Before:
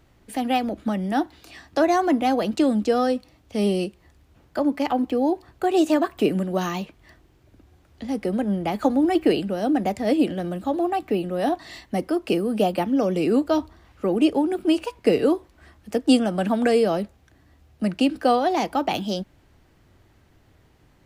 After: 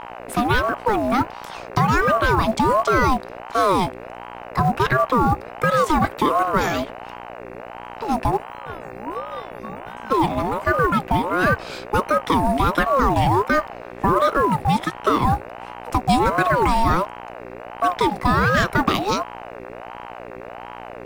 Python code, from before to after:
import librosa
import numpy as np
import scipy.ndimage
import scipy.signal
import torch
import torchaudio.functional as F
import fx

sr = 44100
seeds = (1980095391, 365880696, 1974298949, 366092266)

p1 = fx.over_compress(x, sr, threshold_db=-21.0, ratio=-0.5)
p2 = x + F.gain(torch.from_numpy(p1), 0.0).numpy()
p3 = fx.quant_float(p2, sr, bits=4)
p4 = fx.stiff_resonator(p3, sr, f0_hz=330.0, decay_s=0.53, stiffness=0.002, at=(8.36, 10.1), fade=0.02)
p5 = fx.dmg_buzz(p4, sr, base_hz=60.0, harmonics=38, level_db=-34.0, tilt_db=-4, odd_only=False)
p6 = fx.ring_lfo(p5, sr, carrier_hz=680.0, swing_pct=35, hz=1.4)
y = F.gain(torch.from_numpy(p6), 1.0).numpy()